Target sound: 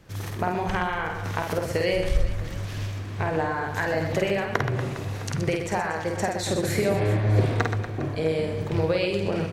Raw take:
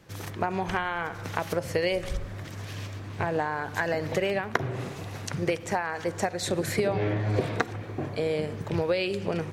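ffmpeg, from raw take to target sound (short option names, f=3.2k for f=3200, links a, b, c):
-af "lowshelf=f=76:g=11,aecho=1:1:50|125|237.5|406.2|659.4:0.631|0.398|0.251|0.158|0.1"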